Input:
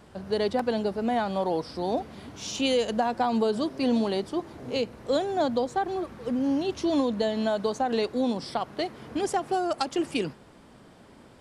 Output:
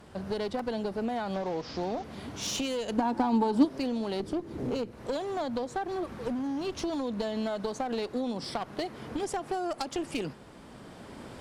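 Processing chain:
0:01.34–0:02.04: linear delta modulator 32 kbit/s, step −42 dBFS
camcorder AGC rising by 7.1 dB per second
0:04.20–0:04.91: low shelf with overshoot 540 Hz +6.5 dB, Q 1.5
downward compressor 12 to 1, threshold −27 dBFS, peak gain reduction 12 dB
asymmetric clip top −31.5 dBFS
0:02.98–0:03.65: hollow resonant body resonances 280/880 Hz, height 15 dB

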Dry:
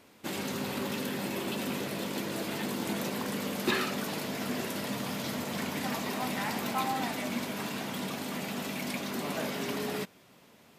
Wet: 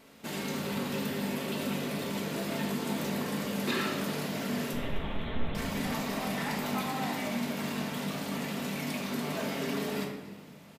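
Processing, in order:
in parallel at 0 dB: downward compressor, threshold −42 dBFS, peak gain reduction 17 dB
on the sum: tape wow and flutter 30 cents
0:04.73–0:05.55: linear-prediction vocoder at 8 kHz pitch kept
echo with shifted repeats 256 ms, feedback 50%, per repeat +36 Hz, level −22 dB
rectangular room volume 730 cubic metres, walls mixed, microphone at 1.6 metres
level −6 dB

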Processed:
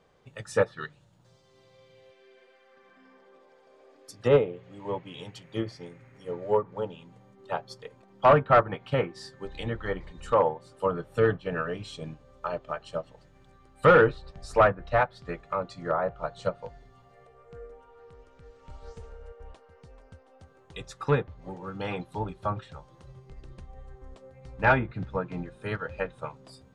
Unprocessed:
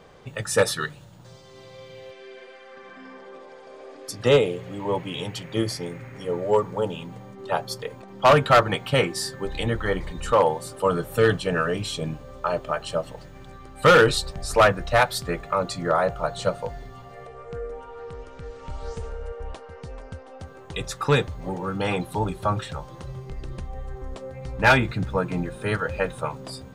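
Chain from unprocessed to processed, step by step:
treble cut that deepens with the level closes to 1,700 Hz, closed at −17 dBFS
expander for the loud parts 1.5 to 1, over −37 dBFS
level −1.5 dB

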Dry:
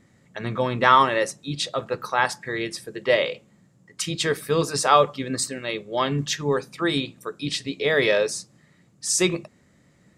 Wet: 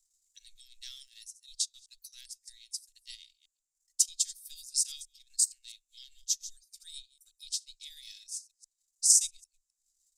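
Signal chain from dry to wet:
delay that plays each chunk backwards 133 ms, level −13 dB
transient designer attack +7 dB, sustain −12 dB
inverse Chebyshev band-stop filter 110–1,100 Hz, stop band 80 dB

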